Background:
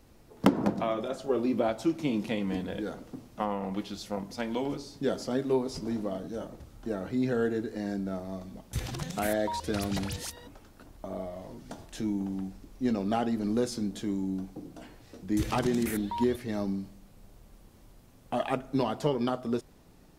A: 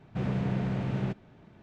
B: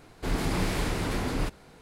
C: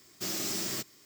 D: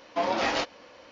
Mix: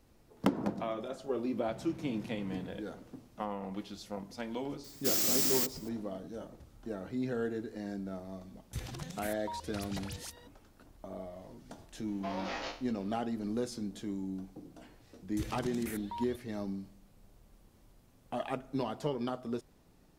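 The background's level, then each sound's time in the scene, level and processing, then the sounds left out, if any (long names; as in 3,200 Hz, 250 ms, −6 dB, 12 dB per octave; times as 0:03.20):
background −6.5 dB
0:01.55: mix in A −8 dB + downward compressor, threshold −37 dBFS
0:04.84: mix in C −1 dB + high-shelf EQ 7,900 Hz +9.5 dB
0:12.07: mix in D −13.5 dB + peak hold with a decay on every bin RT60 0.39 s
not used: B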